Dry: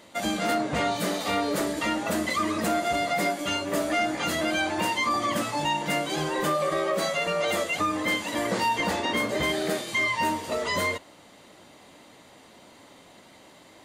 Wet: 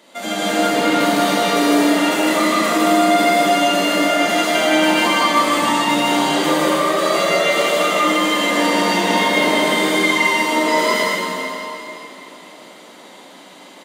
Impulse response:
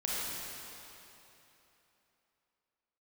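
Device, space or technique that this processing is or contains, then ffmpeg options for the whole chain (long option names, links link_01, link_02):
stadium PA: -filter_complex "[0:a]highpass=frequency=190:width=0.5412,highpass=frequency=190:width=1.3066,equalizer=frequency=3400:width_type=o:width=0.23:gain=3,aecho=1:1:157.4|195.3:0.891|0.316[link_01];[1:a]atrim=start_sample=2205[link_02];[link_01][link_02]afir=irnorm=-1:irlink=0,volume=1.5dB"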